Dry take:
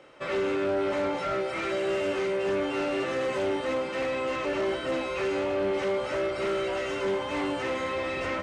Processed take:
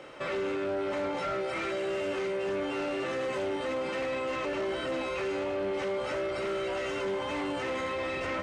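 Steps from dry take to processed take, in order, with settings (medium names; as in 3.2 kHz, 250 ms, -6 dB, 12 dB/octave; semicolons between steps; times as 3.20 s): peak limiter -32.5 dBFS, peak gain reduction 11.5 dB; trim +6 dB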